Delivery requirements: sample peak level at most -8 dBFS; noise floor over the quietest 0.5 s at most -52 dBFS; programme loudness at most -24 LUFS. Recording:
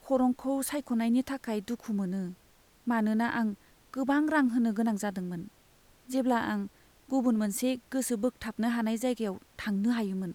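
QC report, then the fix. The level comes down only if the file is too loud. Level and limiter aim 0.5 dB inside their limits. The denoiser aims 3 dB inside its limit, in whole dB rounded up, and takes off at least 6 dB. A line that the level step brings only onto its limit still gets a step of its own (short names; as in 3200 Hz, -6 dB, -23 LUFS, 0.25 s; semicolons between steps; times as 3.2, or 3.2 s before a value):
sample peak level -15.5 dBFS: OK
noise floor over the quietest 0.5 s -62 dBFS: OK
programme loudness -30.5 LUFS: OK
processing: none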